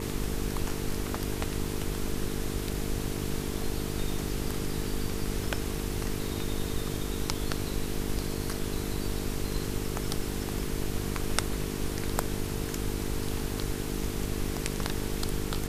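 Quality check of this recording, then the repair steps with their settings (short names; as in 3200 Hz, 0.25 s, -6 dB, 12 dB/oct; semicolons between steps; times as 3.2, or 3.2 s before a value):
buzz 50 Hz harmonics 9 -35 dBFS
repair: de-hum 50 Hz, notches 9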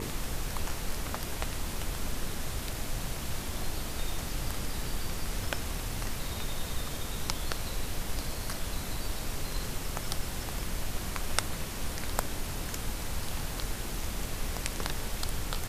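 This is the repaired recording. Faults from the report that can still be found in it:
none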